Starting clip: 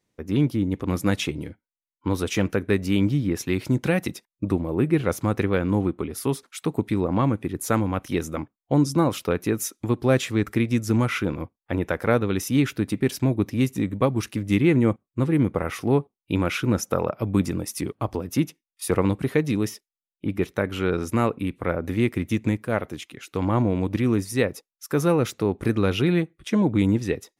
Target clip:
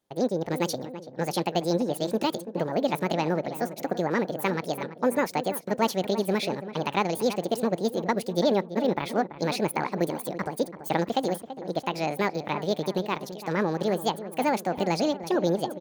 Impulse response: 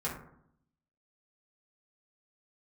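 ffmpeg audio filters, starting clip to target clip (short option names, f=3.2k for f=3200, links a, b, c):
-filter_complex "[0:a]asetrate=76440,aresample=44100,asplit=2[a][b];[b]adelay=334,lowpass=f=1.7k:p=1,volume=-12dB,asplit=2[c][d];[d]adelay=334,lowpass=f=1.7k:p=1,volume=0.55,asplit=2[e][f];[f]adelay=334,lowpass=f=1.7k:p=1,volume=0.55,asplit=2[g][h];[h]adelay=334,lowpass=f=1.7k:p=1,volume=0.55,asplit=2[i][j];[j]adelay=334,lowpass=f=1.7k:p=1,volume=0.55,asplit=2[k][l];[l]adelay=334,lowpass=f=1.7k:p=1,volume=0.55[m];[c][e][g][i][k][m]amix=inputs=6:normalize=0[n];[a][n]amix=inputs=2:normalize=0,volume=-4dB"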